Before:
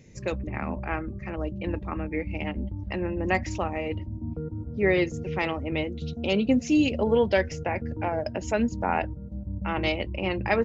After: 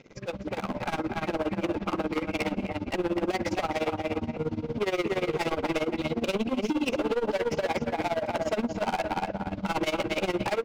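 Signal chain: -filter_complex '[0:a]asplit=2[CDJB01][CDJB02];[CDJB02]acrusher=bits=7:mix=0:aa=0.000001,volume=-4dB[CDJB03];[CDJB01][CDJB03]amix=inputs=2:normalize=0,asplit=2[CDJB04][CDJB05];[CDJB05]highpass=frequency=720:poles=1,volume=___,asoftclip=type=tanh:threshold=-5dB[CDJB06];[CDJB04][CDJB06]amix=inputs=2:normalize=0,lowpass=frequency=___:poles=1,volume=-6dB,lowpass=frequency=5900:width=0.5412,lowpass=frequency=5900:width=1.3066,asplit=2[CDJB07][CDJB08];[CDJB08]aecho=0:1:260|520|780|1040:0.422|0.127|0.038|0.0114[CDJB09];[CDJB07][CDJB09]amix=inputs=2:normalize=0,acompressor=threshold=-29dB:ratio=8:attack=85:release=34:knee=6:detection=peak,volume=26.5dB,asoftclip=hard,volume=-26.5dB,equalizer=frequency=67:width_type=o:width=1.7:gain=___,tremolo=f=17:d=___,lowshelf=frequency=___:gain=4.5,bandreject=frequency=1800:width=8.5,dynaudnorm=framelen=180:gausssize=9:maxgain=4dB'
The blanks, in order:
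13dB, 1600, -14.5, 0.89, 360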